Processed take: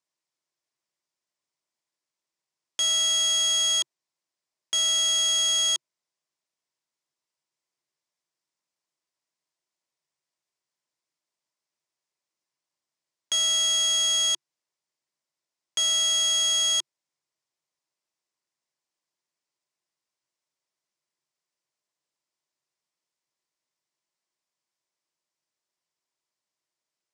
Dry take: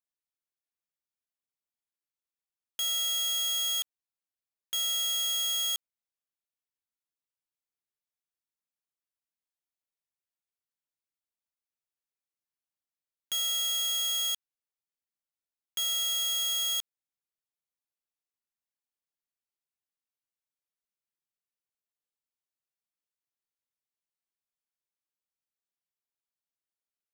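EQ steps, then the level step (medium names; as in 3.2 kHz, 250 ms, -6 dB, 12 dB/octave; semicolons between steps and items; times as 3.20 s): cabinet simulation 130–8200 Hz, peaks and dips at 140 Hz +9 dB, 350 Hz +8 dB, 610 Hz +7 dB, 1 kHz +8 dB, 2 kHz +4 dB, 5.1 kHz +4 dB; treble shelf 5.2 kHz +7.5 dB; +4.0 dB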